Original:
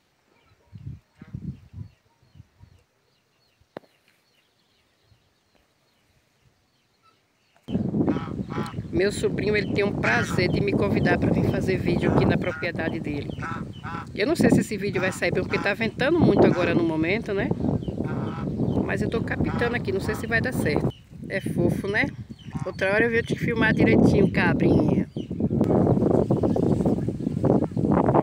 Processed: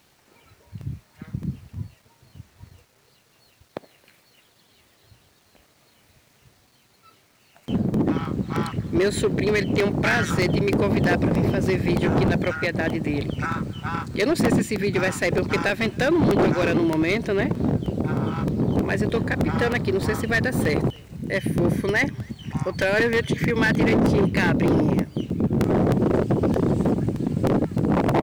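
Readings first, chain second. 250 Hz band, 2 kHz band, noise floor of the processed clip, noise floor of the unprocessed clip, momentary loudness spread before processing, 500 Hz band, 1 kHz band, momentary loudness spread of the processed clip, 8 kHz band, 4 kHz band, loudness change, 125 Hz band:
+1.0 dB, +1.0 dB, -60 dBFS, -67 dBFS, 12 LU, +1.0 dB, +1.5 dB, 9 LU, +4.5 dB, +3.0 dB, +1.0 dB, +1.5 dB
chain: in parallel at -1 dB: compression, threshold -27 dBFS, peak gain reduction 14 dB; on the sum: hard clipper -15 dBFS, distortion -12 dB; word length cut 10-bit, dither none; speakerphone echo 270 ms, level -24 dB; crackling interface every 0.31 s, samples 64, repeat, from 0.50 s

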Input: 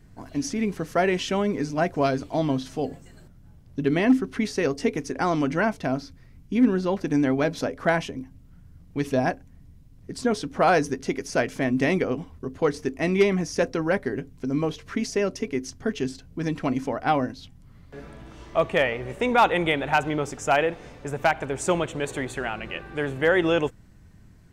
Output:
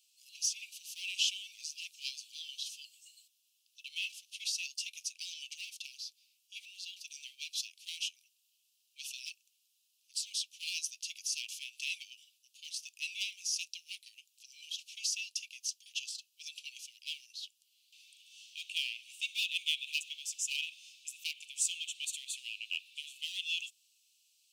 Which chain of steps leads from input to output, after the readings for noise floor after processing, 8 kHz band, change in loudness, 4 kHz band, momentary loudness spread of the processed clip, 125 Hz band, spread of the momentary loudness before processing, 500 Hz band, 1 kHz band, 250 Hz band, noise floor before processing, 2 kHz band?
-76 dBFS, +2.5 dB, -13.0 dB, +1.5 dB, 14 LU, under -40 dB, 11 LU, under -40 dB, under -40 dB, under -40 dB, -50 dBFS, -13.5 dB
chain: in parallel at -5 dB: hard clipper -24 dBFS, distortion -7 dB; on the sum: steep high-pass 2.6 kHz 96 dB/octave; trim -1.5 dB

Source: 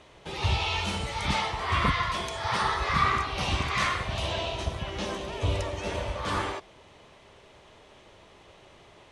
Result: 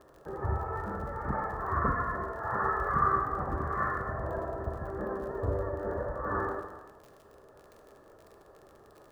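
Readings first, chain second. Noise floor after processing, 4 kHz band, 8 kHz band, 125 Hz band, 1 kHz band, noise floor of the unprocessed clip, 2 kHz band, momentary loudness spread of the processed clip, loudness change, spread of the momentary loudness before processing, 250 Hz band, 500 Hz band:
-57 dBFS, under -35 dB, under -20 dB, -5.0 dB, -2.0 dB, -55 dBFS, -7.0 dB, 9 LU, -4.0 dB, 8 LU, -2.5 dB, 0.0 dB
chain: rippled Chebyshev low-pass 1.8 kHz, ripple 6 dB; crackle 50 per s -45 dBFS; gated-style reverb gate 470 ms falling, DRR 4.5 dB

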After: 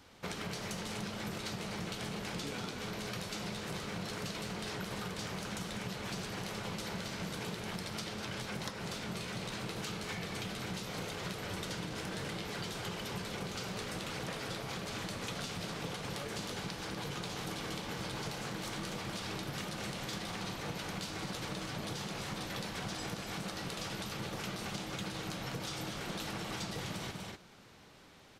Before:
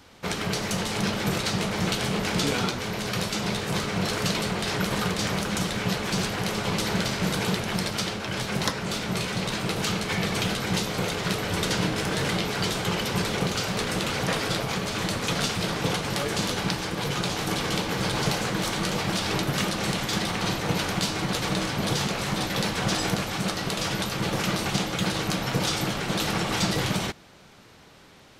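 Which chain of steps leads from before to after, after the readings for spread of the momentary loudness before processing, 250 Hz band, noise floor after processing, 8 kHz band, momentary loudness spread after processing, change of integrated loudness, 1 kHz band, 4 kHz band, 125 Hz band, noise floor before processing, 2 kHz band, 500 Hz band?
2 LU, -13.5 dB, -45 dBFS, -13.0 dB, 1 LU, -13.0 dB, -13.0 dB, -13.0 dB, -13.5 dB, -51 dBFS, -13.0 dB, -13.0 dB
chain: on a send: loudspeakers at several distances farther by 68 m -12 dB, 84 m -11 dB; on the sum: compression, threshold -30 dBFS, peak gain reduction 10 dB; trim -7 dB

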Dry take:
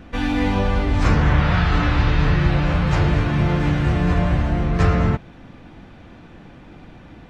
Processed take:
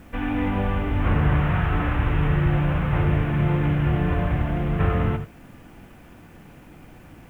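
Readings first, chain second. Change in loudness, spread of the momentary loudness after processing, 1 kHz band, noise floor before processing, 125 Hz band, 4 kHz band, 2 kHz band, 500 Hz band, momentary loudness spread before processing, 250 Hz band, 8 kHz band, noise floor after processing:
-3.5 dB, 4 LU, -4.0 dB, -44 dBFS, -3.0 dB, -9.5 dB, -5.0 dB, -3.5 dB, 3 LU, -3.5 dB, no reading, -47 dBFS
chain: CVSD coder 16 kbps; gated-style reverb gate 110 ms rising, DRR 9 dB; word length cut 10-bit, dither triangular; trim -4 dB

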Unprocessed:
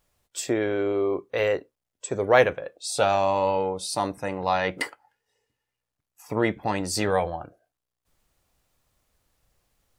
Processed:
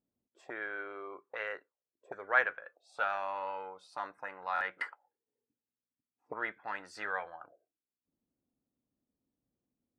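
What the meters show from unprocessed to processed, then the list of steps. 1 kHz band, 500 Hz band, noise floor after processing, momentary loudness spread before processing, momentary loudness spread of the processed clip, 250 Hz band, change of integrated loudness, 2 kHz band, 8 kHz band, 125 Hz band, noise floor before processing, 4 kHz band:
-10.5 dB, -19.0 dB, under -85 dBFS, 12 LU, 17 LU, -24.5 dB, -11.5 dB, -4.0 dB, under -30 dB, under -30 dB, under -85 dBFS, -19.0 dB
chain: auto-wah 250–1500 Hz, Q 3.7, up, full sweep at -26 dBFS; buffer glitch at 4.54 s, samples 1024, times 2; tape noise reduction on one side only decoder only

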